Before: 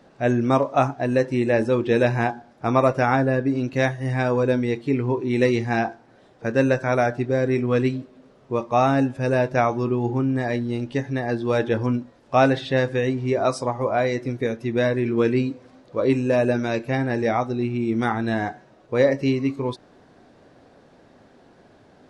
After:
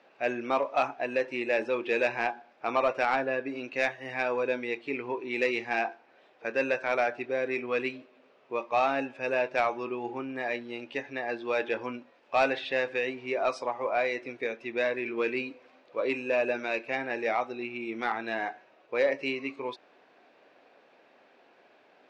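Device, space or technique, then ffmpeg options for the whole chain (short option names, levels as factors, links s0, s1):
intercom: -af "highpass=470,lowpass=4300,equalizer=f=2500:t=o:w=0.44:g=10,asoftclip=type=tanh:threshold=0.282,volume=0.596"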